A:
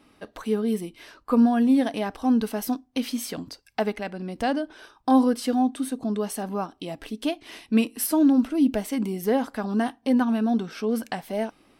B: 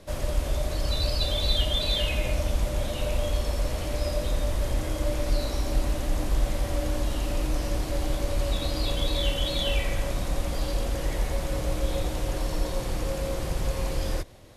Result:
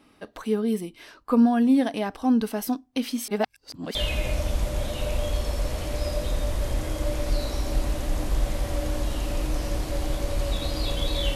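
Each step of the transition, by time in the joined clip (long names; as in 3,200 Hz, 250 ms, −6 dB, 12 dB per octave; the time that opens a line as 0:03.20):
A
0:03.28–0:03.95: reverse
0:03.95: continue with B from 0:01.95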